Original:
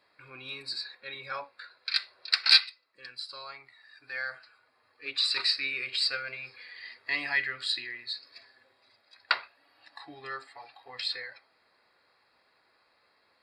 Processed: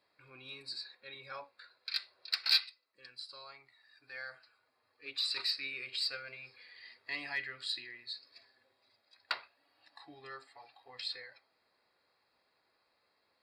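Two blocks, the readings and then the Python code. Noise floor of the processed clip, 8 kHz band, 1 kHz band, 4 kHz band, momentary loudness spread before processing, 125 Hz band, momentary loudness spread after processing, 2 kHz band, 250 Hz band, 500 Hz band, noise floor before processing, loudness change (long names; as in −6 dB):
−77 dBFS, −6.5 dB, −9.5 dB, −7.5 dB, 19 LU, −6.0 dB, 20 LU, −10.0 dB, −6.5 dB, −6.5 dB, −69 dBFS, −7.5 dB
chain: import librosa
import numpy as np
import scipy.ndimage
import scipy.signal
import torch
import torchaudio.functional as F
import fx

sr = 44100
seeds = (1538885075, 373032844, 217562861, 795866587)

p1 = fx.peak_eq(x, sr, hz=1600.0, db=-4.0, octaves=1.4)
p2 = np.clip(p1, -10.0 ** (-22.0 / 20.0), 10.0 ** (-22.0 / 20.0))
p3 = p1 + (p2 * 10.0 ** (-8.5 / 20.0))
y = p3 * 10.0 ** (-9.0 / 20.0)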